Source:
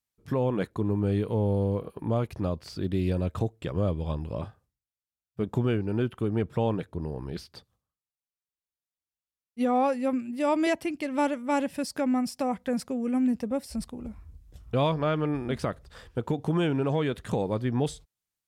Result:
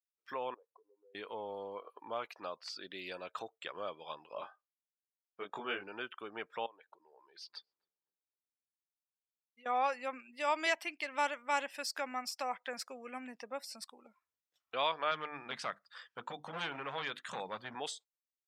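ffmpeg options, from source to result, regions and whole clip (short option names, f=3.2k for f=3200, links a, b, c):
-filter_complex "[0:a]asettb=1/sr,asplit=3[a][b][c];[a]atrim=end=0.544[d];[b]atrim=start=0.54:end=1.15,asetpts=PTS-STARTPTS,afade=t=in:d=0.004:c=qsin,afade=t=out:st=0.606:d=0.004:c=qsin,bandpass=f=490:t=q:w=3.6,acompressor=threshold=-46dB:ratio=16:attack=3.2:release=140:knee=1:detection=peak[e];[c]atrim=start=1.146[f];[d][e]acrossfade=d=0.004:c1=hsin:c2=qsin[g];[g][f]acrossfade=d=0.004:c1=qsin:c2=hsin,asettb=1/sr,asplit=3[h][i][j];[h]atrim=end=4.344[k];[i]atrim=start=4.34:end=5.88,asetpts=PTS-STARTPTS,afade=t=in:d=0.004:c=qsin,afade=t=out:st=1.536:d=0.004:c=qsin,highshelf=f=7.8k:g=-10,asplit=2[l][m];[m]adelay=21,volume=-2dB[n];[l][n]amix=inputs=2:normalize=0,atrim=end_sample=67914[o];[j]atrim=start=5.876[p];[k][o]acrossfade=d=0.004:c1=hsin:c2=qsin[q];[q][p]acrossfade=d=0.004:c1=qsin:c2=hsin,asettb=1/sr,asplit=3[r][s][t];[r]atrim=end=6.664[u];[s]atrim=start=6.66:end=9.66,asetpts=PTS-STARTPTS,afade=t=in:d=0.004:c=qsin,afade=t=out:st=2.996:d=0.004:c=qsin,acompressor=threshold=-39dB:ratio=16:attack=3.2:release=140:knee=1:detection=peak,asplit=2[v][w];[w]adelay=261,lowpass=f=860:p=1,volume=-12dB,asplit=2[x][y];[y]adelay=261,lowpass=f=860:p=1,volume=0.55,asplit=2[z][aa];[aa]adelay=261,lowpass=f=860:p=1,volume=0.55,asplit=2[ab][ac];[ac]adelay=261,lowpass=f=860:p=1,volume=0.55,asplit=2[ad][ae];[ae]adelay=261,lowpass=f=860:p=1,volume=0.55,asplit=2[af][ag];[ag]adelay=261,lowpass=f=860:p=1,volume=0.55[ah];[v][x][z][ab][ad][af][ah]amix=inputs=7:normalize=0,atrim=end_sample=132300[ai];[t]atrim=start=9.656[aj];[u][ai]acrossfade=d=0.004:c1=hsin:c2=qsin[ak];[ak][aj]acrossfade=d=0.004:c1=qsin:c2=hsin,asettb=1/sr,asplit=3[al][am][an];[al]atrim=end=15.114[ao];[am]atrim=start=15.11:end=17.75,asetpts=PTS-STARTPTS,afade=t=in:d=0.004:c=qsin,afade=t=out:st=2.636:d=0.004:c=qsin,lowshelf=f=250:t=q:w=1.5:g=8,bandreject=f=50:t=h:w=6,bandreject=f=100:t=h:w=6,bandreject=f=150:t=h:w=6,bandreject=f=200:t=h:w=6,bandreject=f=250:t=h:w=6,bandreject=f=300:t=h:w=6,bandreject=f=350:t=h:w=6,asoftclip=type=hard:threshold=-17.5dB[ap];[an]atrim=start=17.746[aq];[ao][ap]acrossfade=d=0.004:c1=hsin:c2=qsin[ar];[ar][aq]acrossfade=d=0.004:c1=qsin:c2=hsin,highpass=1.1k,afftdn=nr=19:nf=-56,equalizer=f=9.8k:w=2.5:g=-11,volume=1dB"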